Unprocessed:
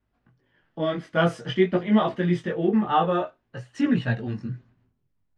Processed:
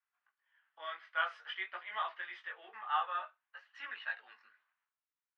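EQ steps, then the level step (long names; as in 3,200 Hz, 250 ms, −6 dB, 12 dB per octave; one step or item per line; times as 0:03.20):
high-pass filter 1,100 Hz 24 dB per octave
high-frequency loss of the air 330 metres
−3.0 dB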